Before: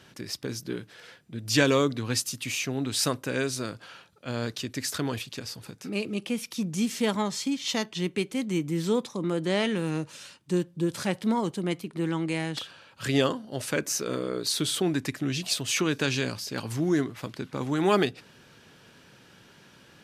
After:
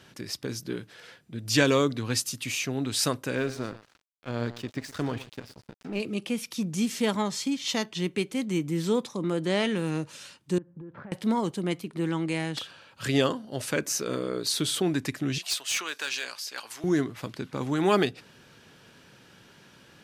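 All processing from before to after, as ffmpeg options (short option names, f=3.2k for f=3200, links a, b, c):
-filter_complex "[0:a]asettb=1/sr,asplit=3[a][b][c];[a]atrim=end=3.354[d];[b]atrim=start=3.35:end=6,asetpts=PTS-STARTPTS,afade=t=in:d=0.004:c=qsin,afade=t=out:st=2.646:d=0.004:c=qsin,aemphasis=mode=reproduction:type=75fm,aecho=1:1:42|118:0.106|0.224,atrim=end_sample=116865,aeval=exprs='sgn(val(0))*max(abs(val(0))-0.00668,0)':c=same[e];[c]atrim=start=5.996[f];[d][e]acrossfade=d=0.004:c1=hsin:c2=qsin[g];[g][f]acrossfade=d=0.004:c1=qsin:c2=hsin,asettb=1/sr,asplit=3[h][i][j];[h]atrim=end=10.584[k];[i]atrim=start=10.58:end=11.12,asetpts=PTS-STARTPTS,afade=t=in:d=0.004:c=qsin,afade=t=out:st=0.536:d=0.004:c=qsin,lowpass=f=1.7k:w=0.5412,lowpass=f=1.7k:w=1.3066,acompressor=threshold=-39dB:ratio=10:attack=3.2:release=140:knee=1:detection=peak[l];[j]atrim=start=11.116[m];[k][l]acrossfade=d=0.004:c1=hsin:c2=qsin[n];[n][m]acrossfade=d=0.004:c1=qsin:c2=hsin,asettb=1/sr,asplit=3[o][p][q];[o]atrim=end=15.384[r];[p]atrim=start=15.38:end=16.84,asetpts=PTS-STARTPTS,afade=t=in:d=0.004:c=qsin,afade=t=out:st=1.456:d=0.004:c=qsin,highpass=930,asoftclip=type=hard:threshold=-22.5dB[s];[q]atrim=start=16.836[t];[r][s]acrossfade=d=0.004:c1=hsin:c2=qsin[u];[u][t]acrossfade=d=0.004:c1=qsin:c2=hsin"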